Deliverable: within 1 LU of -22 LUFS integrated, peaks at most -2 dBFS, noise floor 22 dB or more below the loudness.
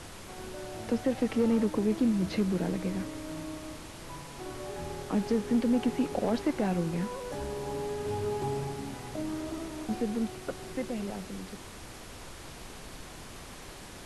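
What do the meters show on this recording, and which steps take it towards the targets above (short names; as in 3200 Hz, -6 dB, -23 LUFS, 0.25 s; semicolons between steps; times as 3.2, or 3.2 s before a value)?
clipped 0.4%; flat tops at -19.5 dBFS; noise floor -46 dBFS; noise floor target -54 dBFS; loudness -32.0 LUFS; peak -19.5 dBFS; loudness target -22.0 LUFS
-> clip repair -19.5 dBFS; noise print and reduce 8 dB; gain +10 dB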